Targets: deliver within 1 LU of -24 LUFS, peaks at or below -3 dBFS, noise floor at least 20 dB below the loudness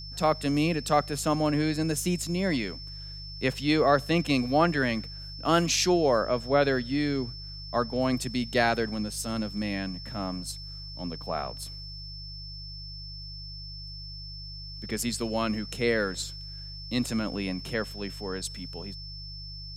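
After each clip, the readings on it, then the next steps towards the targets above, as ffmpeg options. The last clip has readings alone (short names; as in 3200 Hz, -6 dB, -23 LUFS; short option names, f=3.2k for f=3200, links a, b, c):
hum 50 Hz; harmonics up to 150 Hz; hum level -40 dBFS; steady tone 5300 Hz; tone level -41 dBFS; loudness -28.0 LUFS; peak -9.5 dBFS; loudness target -24.0 LUFS
-> -af "bandreject=f=50:t=h:w=4,bandreject=f=100:t=h:w=4,bandreject=f=150:t=h:w=4"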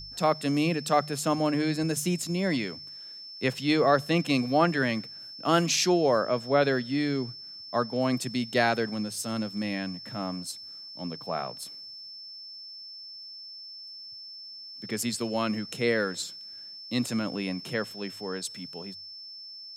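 hum none; steady tone 5300 Hz; tone level -41 dBFS
-> -af "bandreject=f=5.3k:w=30"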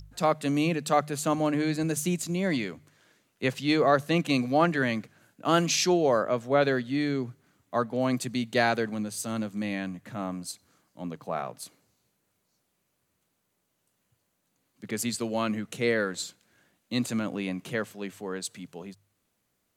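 steady tone none; loudness -28.0 LUFS; peak -10.0 dBFS; loudness target -24.0 LUFS
-> -af "volume=4dB"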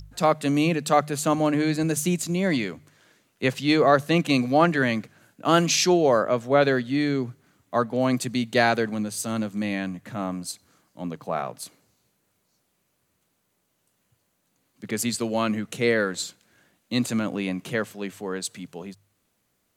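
loudness -24.0 LUFS; peak -6.0 dBFS; noise floor -72 dBFS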